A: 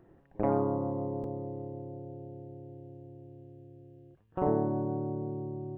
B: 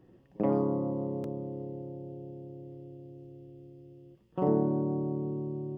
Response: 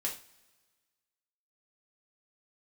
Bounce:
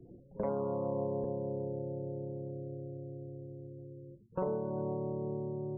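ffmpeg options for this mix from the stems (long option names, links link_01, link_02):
-filter_complex "[0:a]adynamicequalizer=threshold=0.00316:dfrequency=2000:dqfactor=0.73:tfrequency=2000:tqfactor=0.73:attack=5:release=100:ratio=0.375:range=2:mode=cutabove:tftype=bell,alimiter=level_in=1.5dB:limit=-24dB:level=0:latency=1:release=370,volume=-1.5dB,volume=1dB[link_01];[1:a]acompressor=threshold=-37dB:ratio=6,lowpass=1000,volume=1dB,asplit=2[link_02][link_03];[link_03]volume=-11.5dB[link_04];[2:a]atrim=start_sample=2205[link_05];[link_04][link_05]afir=irnorm=-1:irlink=0[link_06];[link_01][link_02][link_06]amix=inputs=3:normalize=0,afftfilt=real='re*gte(hypot(re,im),0.00251)':imag='im*gte(hypot(re,im),0.00251)':win_size=1024:overlap=0.75,acrossover=split=270[link_07][link_08];[link_07]acompressor=threshold=-40dB:ratio=6[link_09];[link_09][link_08]amix=inputs=2:normalize=0"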